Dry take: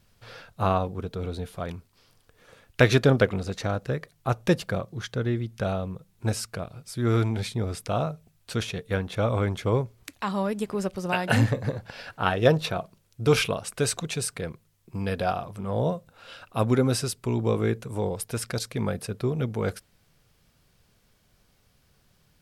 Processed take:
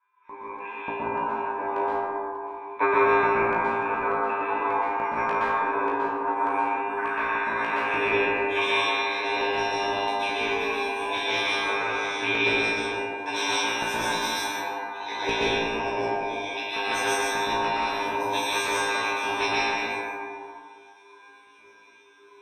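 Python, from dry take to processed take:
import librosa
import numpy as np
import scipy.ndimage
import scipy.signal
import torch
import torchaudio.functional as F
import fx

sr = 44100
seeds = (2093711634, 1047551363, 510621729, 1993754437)

y = fx.band_invert(x, sr, width_hz=1000)
y = fx.rider(y, sr, range_db=4, speed_s=0.5)
y = fx.comb_fb(y, sr, f0_hz=100.0, decay_s=0.58, harmonics='all', damping=0.0, mix_pct=100)
y = fx.formant_shift(y, sr, semitones=6)
y = fx.high_shelf(y, sr, hz=2200.0, db=-9.5)
y = fx.fixed_phaser(y, sr, hz=940.0, stages=8)
y = fx.filter_sweep_lowpass(y, sr, from_hz=1100.0, to_hz=4600.0, start_s=6.25, end_s=9.57, q=4.0)
y = fx.ripple_eq(y, sr, per_octave=1.6, db=16)
y = fx.filter_lfo_highpass(y, sr, shape='square', hz=1.7, low_hz=280.0, high_hz=2500.0, q=1.2)
y = fx.room_flutter(y, sr, wall_m=3.0, rt60_s=0.35)
y = fx.rev_plate(y, sr, seeds[0], rt60_s=1.9, hf_ratio=0.35, predelay_ms=110, drr_db=-8.0)
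y = fx.spectral_comp(y, sr, ratio=2.0)
y = y * 10.0 ** (-3.0 / 20.0)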